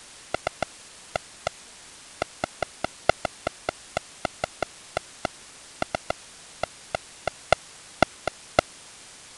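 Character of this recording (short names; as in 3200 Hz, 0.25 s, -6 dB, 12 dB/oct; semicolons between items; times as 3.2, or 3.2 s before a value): a buzz of ramps at a fixed pitch in blocks of 64 samples; chopped level 2 Hz, depth 65%, duty 20%; a quantiser's noise floor 8-bit, dither triangular; IMA ADPCM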